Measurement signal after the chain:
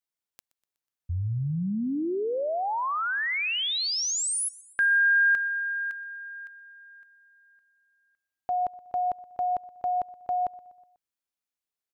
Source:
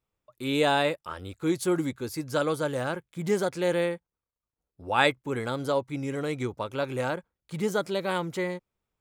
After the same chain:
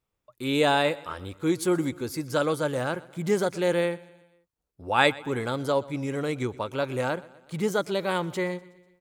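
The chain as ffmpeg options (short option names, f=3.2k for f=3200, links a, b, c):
-af "aecho=1:1:123|246|369|492:0.0891|0.0481|0.026|0.014,volume=1.5dB"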